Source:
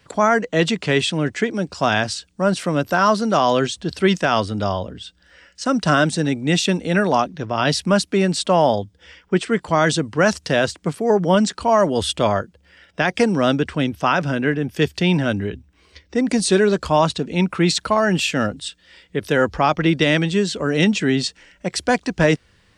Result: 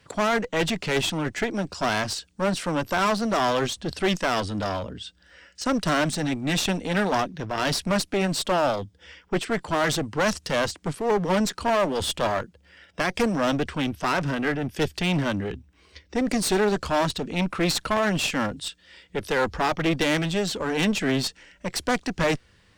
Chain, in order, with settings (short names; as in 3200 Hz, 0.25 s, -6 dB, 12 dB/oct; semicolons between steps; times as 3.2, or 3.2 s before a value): one-sided clip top -26 dBFS, bottom -10.5 dBFS; gain -2 dB